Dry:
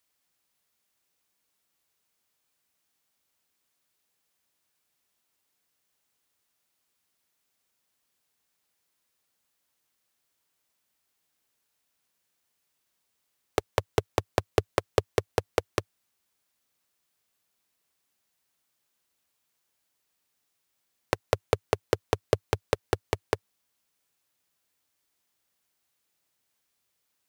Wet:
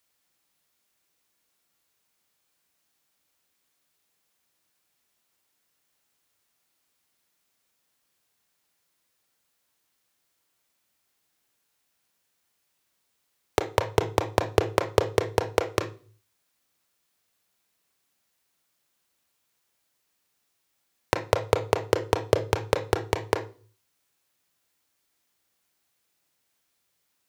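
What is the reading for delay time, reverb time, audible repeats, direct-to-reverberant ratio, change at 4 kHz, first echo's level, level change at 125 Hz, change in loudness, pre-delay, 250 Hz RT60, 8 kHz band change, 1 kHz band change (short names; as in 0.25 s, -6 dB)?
none, 0.40 s, none, 6.0 dB, +3.0 dB, none, +3.5 dB, +3.5 dB, 27 ms, 0.50 s, +3.0 dB, +4.5 dB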